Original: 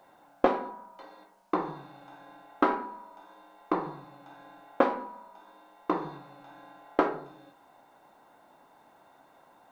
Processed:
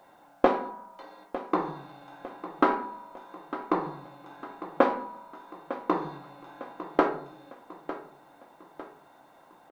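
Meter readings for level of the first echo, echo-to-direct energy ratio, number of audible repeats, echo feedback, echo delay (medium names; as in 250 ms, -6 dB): -13.5 dB, -12.5 dB, 4, 45%, 903 ms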